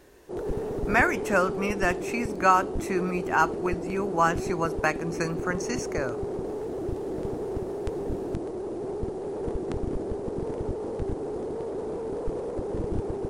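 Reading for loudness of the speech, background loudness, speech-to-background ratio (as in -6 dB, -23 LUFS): -27.0 LUFS, -32.5 LUFS, 5.5 dB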